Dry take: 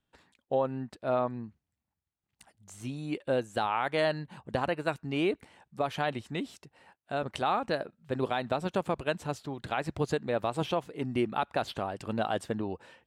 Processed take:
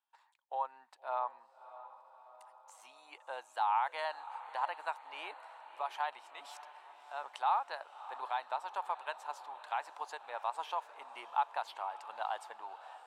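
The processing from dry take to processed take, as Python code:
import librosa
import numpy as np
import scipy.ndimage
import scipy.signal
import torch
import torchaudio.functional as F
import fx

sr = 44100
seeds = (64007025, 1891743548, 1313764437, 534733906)

y = fx.transient(x, sr, attack_db=-3, sustain_db=8, at=(6.26, 7.29))
y = fx.ladder_highpass(y, sr, hz=830.0, resonance_pct=70)
y = fx.echo_diffused(y, sr, ms=616, feedback_pct=59, wet_db=-15)
y = y * librosa.db_to_amplitude(1.5)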